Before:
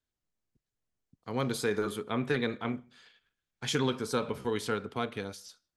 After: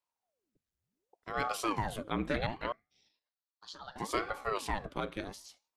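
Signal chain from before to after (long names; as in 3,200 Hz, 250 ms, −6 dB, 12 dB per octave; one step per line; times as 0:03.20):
0:02.72–0:03.96: pair of resonant band-passes 2,200 Hz, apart 2 octaves
ring modulator whose carrier an LFO sweeps 520 Hz, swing 90%, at 0.69 Hz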